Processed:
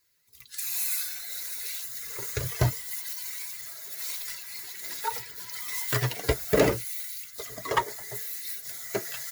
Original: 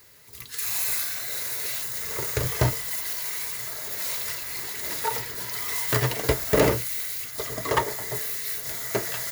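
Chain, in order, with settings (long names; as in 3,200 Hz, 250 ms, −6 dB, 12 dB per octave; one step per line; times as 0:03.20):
spectral dynamics exaggerated over time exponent 1.5
pitch vibrato 13 Hz 31 cents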